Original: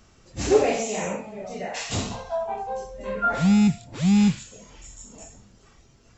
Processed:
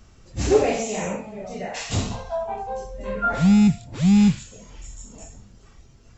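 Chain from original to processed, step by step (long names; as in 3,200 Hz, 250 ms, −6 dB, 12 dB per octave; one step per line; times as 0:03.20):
low-shelf EQ 130 Hz +9 dB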